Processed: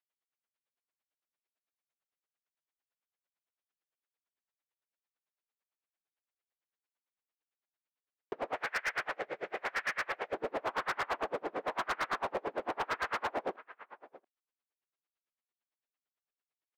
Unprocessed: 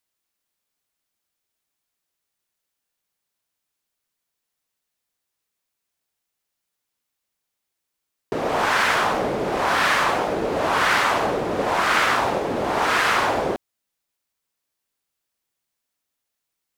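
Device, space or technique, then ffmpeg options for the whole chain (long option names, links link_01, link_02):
helicopter radio: -filter_complex "[0:a]acrossover=split=2600[link_01][link_02];[link_02]acompressor=threshold=-44dB:ratio=4:attack=1:release=60[link_03];[link_01][link_03]amix=inputs=2:normalize=0,asettb=1/sr,asplit=3[link_04][link_05][link_06];[link_04]atrim=end=8.544[link_07];[link_05]atrim=start=8.54:end=10.33,asetpts=PTS-STARTPTS,afade=type=in:duration=0.004:curve=qsin,afade=type=out:start_time=1.786:duration=0.004:curve=qsin,equalizer=frequency=250:width_type=o:width=1:gain=-12,equalizer=frequency=1000:width_type=o:width=1:gain=-9,equalizer=frequency=2000:width_type=o:width=1:gain=7,equalizer=frequency=8000:width_type=o:width=1:gain=5[link_08];[link_06]atrim=start=10.326[link_09];[link_07][link_08]acrossfade=duration=0.004:curve1=hsin:curve2=qsin[link_10];[link_10][link_09]acrossfade=duration=0.004:curve1=qsin:curve2=hsin,highpass=340,lowpass=2700,aecho=1:1:684:0.0944,aeval=exprs='val(0)*pow(10,-34*(0.5-0.5*cos(2*PI*8.9*n/s))/20)':channel_layout=same,asoftclip=type=hard:threshold=-24dB,volume=-4.5dB"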